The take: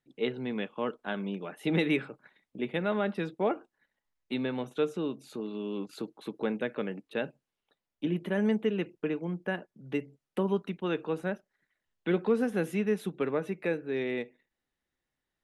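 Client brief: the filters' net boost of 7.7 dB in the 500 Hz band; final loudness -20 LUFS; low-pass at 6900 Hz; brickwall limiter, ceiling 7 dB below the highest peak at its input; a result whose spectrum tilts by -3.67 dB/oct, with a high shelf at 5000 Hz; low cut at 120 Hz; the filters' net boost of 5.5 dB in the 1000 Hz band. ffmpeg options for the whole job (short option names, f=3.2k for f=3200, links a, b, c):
-af "highpass=120,lowpass=6.9k,equalizer=f=500:t=o:g=8.5,equalizer=f=1k:t=o:g=4,highshelf=f=5k:g=4.5,volume=9dB,alimiter=limit=-7dB:level=0:latency=1"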